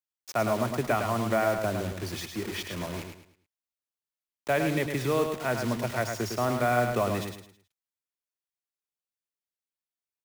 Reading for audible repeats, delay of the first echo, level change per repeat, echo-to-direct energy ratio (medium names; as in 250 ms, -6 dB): 3, 107 ms, -10.0 dB, -5.5 dB